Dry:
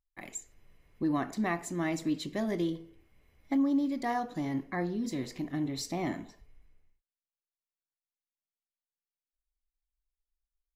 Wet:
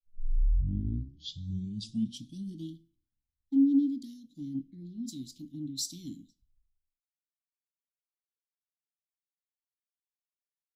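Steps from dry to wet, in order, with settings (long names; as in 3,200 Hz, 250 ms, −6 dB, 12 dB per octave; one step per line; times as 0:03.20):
turntable start at the beginning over 2.75 s
Chebyshev band-stop filter 290–3,400 Hz, order 4
multiband upward and downward expander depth 100%
level −3.5 dB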